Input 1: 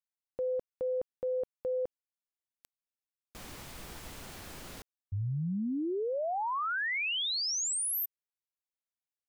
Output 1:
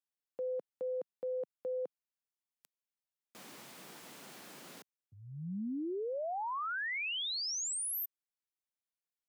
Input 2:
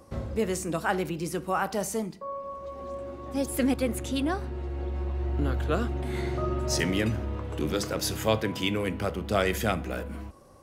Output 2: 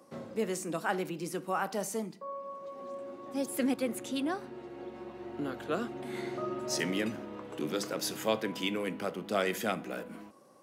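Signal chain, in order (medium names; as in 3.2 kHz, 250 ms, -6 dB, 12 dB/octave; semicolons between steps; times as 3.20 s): high-pass 170 Hz 24 dB/octave; trim -4.5 dB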